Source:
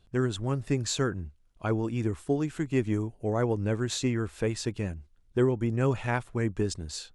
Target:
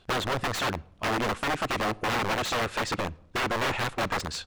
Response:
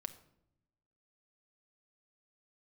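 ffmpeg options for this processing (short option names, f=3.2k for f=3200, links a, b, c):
-filter_complex "[0:a]atempo=1.6,aeval=exprs='(mod(22.4*val(0)+1,2)-1)/22.4':c=same,asplit=2[a][b];[b]highpass=f=720:p=1,volume=13dB,asoftclip=type=tanh:threshold=-27dB[c];[a][c]amix=inputs=2:normalize=0,lowpass=f=3.2k:p=1,volume=-6dB,asplit=2[d][e];[1:a]atrim=start_sample=2205,lowpass=6.8k[f];[e][f]afir=irnorm=-1:irlink=0,volume=-7dB[g];[d][g]amix=inputs=2:normalize=0,volume=3.5dB"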